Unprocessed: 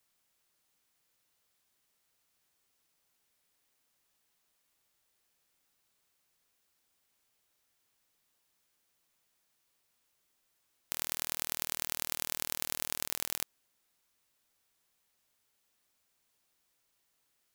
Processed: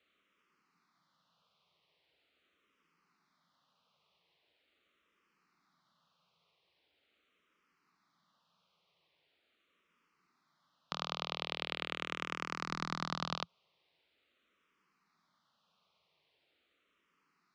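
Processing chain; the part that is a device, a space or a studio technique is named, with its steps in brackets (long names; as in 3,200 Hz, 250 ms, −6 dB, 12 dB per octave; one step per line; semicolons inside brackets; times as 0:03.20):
0:12.65–0:13.33: low-shelf EQ 150 Hz +9.5 dB
barber-pole phaser into a guitar amplifier (frequency shifter mixed with the dry sound −0.42 Hz; soft clipping −18 dBFS, distortion −9 dB; loudspeaker in its box 100–4,000 Hz, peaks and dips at 110 Hz −10 dB, 170 Hz +7 dB, 780 Hz −3 dB, 1,200 Hz +7 dB, 1,700 Hz −5 dB)
level +9 dB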